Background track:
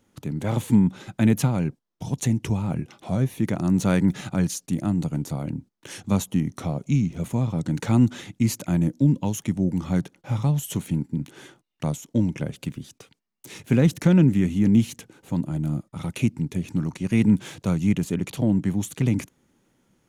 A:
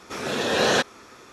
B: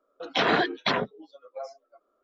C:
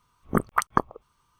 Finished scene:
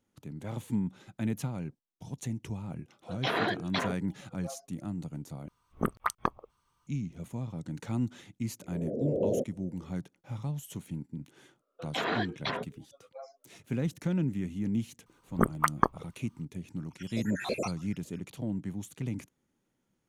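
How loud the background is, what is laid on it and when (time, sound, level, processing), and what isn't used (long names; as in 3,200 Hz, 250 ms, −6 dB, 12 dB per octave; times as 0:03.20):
background track −13 dB
0:02.88: mix in B −7 dB
0:05.48: overwrite with C −6 dB + soft clipping −5 dBFS
0:08.61: mix in A −5 dB + Butterworth low-pass 630 Hz 72 dB per octave
0:11.59: mix in B −8.5 dB
0:15.06: mix in C −2.5 dB
0:16.89: mix in A −7.5 dB, fades 0.05 s + time-frequency cells dropped at random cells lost 78%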